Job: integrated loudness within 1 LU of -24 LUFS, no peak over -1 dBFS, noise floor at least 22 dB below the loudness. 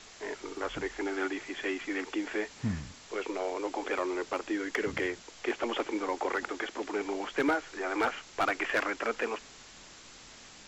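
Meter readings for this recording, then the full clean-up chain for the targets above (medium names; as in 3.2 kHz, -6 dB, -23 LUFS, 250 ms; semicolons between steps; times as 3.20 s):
clipped samples 0.3%; clipping level -21.5 dBFS; noise floor -52 dBFS; noise floor target -56 dBFS; loudness -33.5 LUFS; peak level -21.5 dBFS; loudness target -24.0 LUFS
-> clip repair -21.5 dBFS; noise reduction 6 dB, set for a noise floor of -52 dBFS; trim +9.5 dB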